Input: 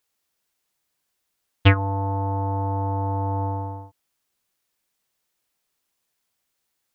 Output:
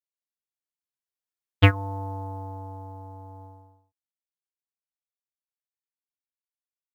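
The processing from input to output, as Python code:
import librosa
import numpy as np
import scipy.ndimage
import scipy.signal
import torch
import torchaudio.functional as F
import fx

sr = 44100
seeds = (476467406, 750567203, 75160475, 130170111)

y = fx.doppler_pass(x, sr, speed_mps=8, closest_m=5.3, pass_at_s=1.8)
y = fx.quant_companded(y, sr, bits=8)
y = fx.upward_expand(y, sr, threshold_db=-48.0, expansion=1.5)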